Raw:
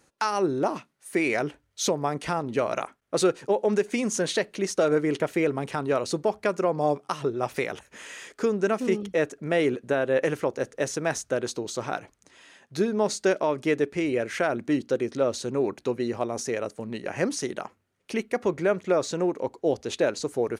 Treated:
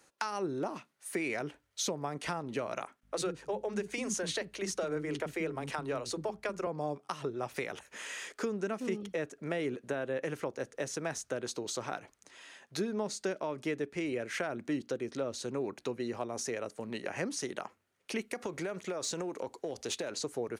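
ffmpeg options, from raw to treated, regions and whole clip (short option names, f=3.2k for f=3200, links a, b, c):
-filter_complex "[0:a]asettb=1/sr,asplit=3[a][b][c];[a]atrim=end=2.994[d];[b]atrim=start=2.99:end=6.67,asetpts=PTS-STARTPTS,afade=t=in:d=0.004:c=qsin,afade=t=out:st=3.676:d=0.004:c=qsin,aeval=exprs='val(0)+0.00158*(sin(2*PI*50*n/s)+sin(2*PI*2*50*n/s)/2+sin(2*PI*3*50*n/s)/3+sin(2*PI*4*50*n/s)/4+sin(2*PI*5*50*n/s)/5)':c=same,acrossover=split=290[e][f];[e]adelay=40[g];[g][f]amix=inputs=2:normalize=0,atrim=end_sample=162288[h];[c]atrim=start=6.666[i];[d][h]acrossfade=d=0.004:c1=hsin:c2=qsin[j];[j][i]acrossfade=d=0.004:c1=qsin:c2=hsin,asettb=1/sr,asplit=3[k][l][m];[k]atrim=end=18.214[n];[l]atrim=start=18.21:end=20.11,asetpts=PTS-STARTPTS,afade=t=in:d=0.004:c=qsin,afade=t=out:st=1.896:d=0.004:c=qsin,equalizer=f=10k:t=o:w=2.2:g=7,acompressor=threshold=-25dB:ratio=10:attack=3.2:release=140:knee=1:detection=peak,aeval=exprs='clip(val(0),-1,0.0631)':c=same[o];[m]atrim=start=20.106[p];[n][o]acrossfade=d=0.004:c1=hsin:c2=qsin[q];[q][p]acrossfade=d=0.004:c1=qsin:c2=hsin,acrossover=split=250[r][s];[s]acompressor=threshold=-33dB:ratio=4[t];[r][t]amix=inputs=2:normalize=0,lowshelf=f=290:g=-10"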